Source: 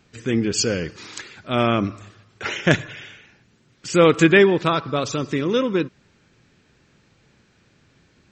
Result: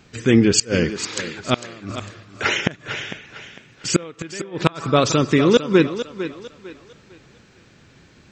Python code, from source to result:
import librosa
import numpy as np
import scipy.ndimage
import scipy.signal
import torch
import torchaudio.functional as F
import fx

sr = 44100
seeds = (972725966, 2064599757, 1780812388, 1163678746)

y = fx.gate_flip(x, sr, shuts_db=-9.0, range_db=-29)
y = fx.echo_thinned(y, sr, ms=452, feedback_pct=34, hz=220.0, wet_db=-11)
y = F.gain(torch.from_numpy(y), 7.0).numpy()